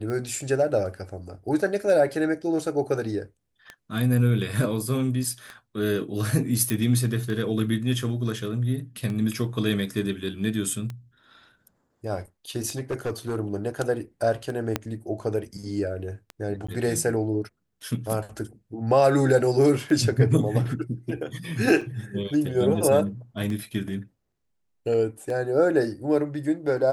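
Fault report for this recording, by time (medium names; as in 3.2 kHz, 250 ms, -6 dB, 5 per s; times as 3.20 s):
tick 33 1/3 rpm -21 dBFS
6.70 s: pop -12 dBFS
12.68–13.36 s: clipped -23.5 dBFS
14.76 s: pop -9 dBFS
16.67–16.68 s: dropout
21.81 s: dropout 4.8 ms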